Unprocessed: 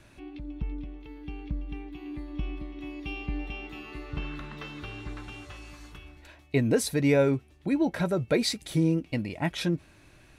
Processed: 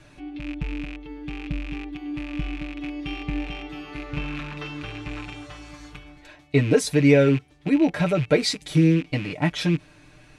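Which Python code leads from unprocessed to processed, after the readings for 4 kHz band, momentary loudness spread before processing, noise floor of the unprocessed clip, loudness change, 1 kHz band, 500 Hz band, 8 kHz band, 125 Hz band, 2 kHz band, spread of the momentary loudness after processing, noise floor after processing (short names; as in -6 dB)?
+5.0 dB, 18 LU, -57 dBFS, +6.0 dB, +4.5 dB, +5.5 dB, +2.5 dB, +7.0 dB, +6.5 dB, 17 LU, -52 dBFS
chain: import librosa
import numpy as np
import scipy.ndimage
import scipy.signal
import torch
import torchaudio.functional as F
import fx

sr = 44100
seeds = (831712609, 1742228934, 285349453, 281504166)

y = fx.rattle_buzz(x, sr, strikes_db=-39.0, level_db=-29.0)
y = scipy.signal.sosfilt(scipy.signal.butter(2, 8700.0, 'lowpass', fs=sr, output='sos'), y)
y = y + 0.7 * np.pad(y, (int(6.7 * sr / 1000.0), 0))[:len(y)]
y = F.gain(torch.from_numpy(y), 3.0).numpy()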